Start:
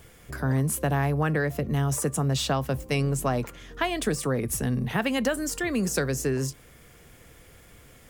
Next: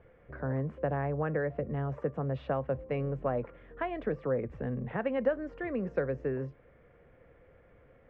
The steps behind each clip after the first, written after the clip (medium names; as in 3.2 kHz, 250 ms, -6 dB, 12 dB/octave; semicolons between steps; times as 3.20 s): low-pass 2.1 kHz 24 dB/octave; peaking EQ 530 Hz +10 dB 0.55 oct; trim -9 dB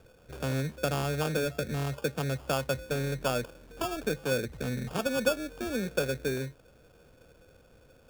sample-rate reducer 2 kHz, jitter 0%; trim +1.5 dB